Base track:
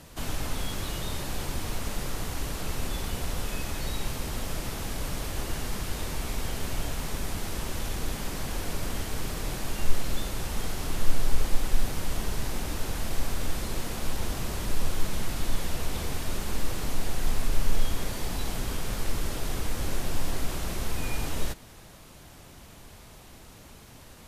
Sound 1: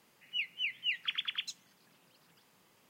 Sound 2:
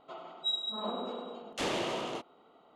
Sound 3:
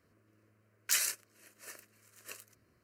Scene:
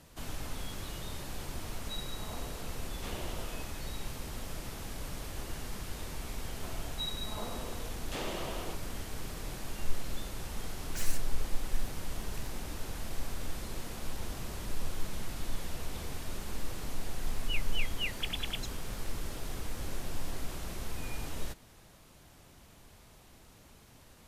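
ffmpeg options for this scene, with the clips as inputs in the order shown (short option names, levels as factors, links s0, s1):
-filter_complex "[2:a]asplit=2[s0][s1];[0:a]volume=0.398[s2];[3:a]volume=33.5,asoftclip=hard,volume=0.0299[s3];[s0]atrim=end=2.75,asetpts=PTS-STARTPTS,volume=0.266,afade=t=in:d=0.004:c=hsin,afade=t=out:st=2.746:d=0.004:c=hsin,adelay=1450[s4];[s1]atrim=end=2.75,asetpts=PTS-STARTPTS,volume=0.501,afade=t=in:d=0.004:c=hsin,afade=t=out:st=2.746:d=0.004:c=hsin,adelay=6540[s5];[s3]atrim=end=2.83,asetpts=PTS-STARTPTS,volume=0.447,afade=t=in:d=0.004:c=hsin,afade=t=out:st=2.826:d=0.004:c=hsin,adelay=10060[s6];[1:a]atrim=end=2.89,asetpts=PTS-STARTPTS,volume=0.75,afade=t=in:d=0.004:c=hsin,afade=t=out:st=2.886:d=0.004:c=hsin,adelay=17150[s7];[s2][s4][s5][s6][s7]amix=inputs=5:normalize=0"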